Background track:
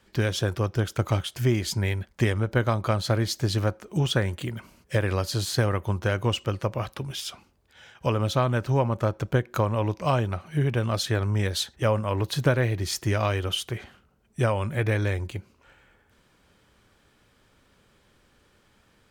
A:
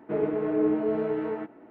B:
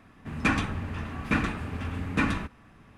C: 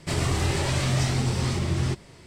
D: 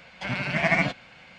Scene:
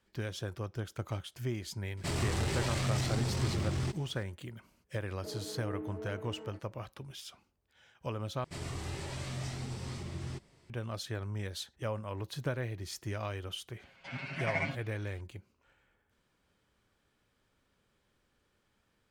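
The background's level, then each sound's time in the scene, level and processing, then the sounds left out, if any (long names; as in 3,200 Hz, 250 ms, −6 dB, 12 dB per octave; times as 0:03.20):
background track −13 dB
0:01.97: mix in C −13 dB + leveller curve on the samples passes 2
0:05.13: mix in A −17 dB
0:08.44: overwrite with C −15 dB
0:13.83: mix in D −15.5 dB + comb filter 7.4 ms, depth 99%
not used: B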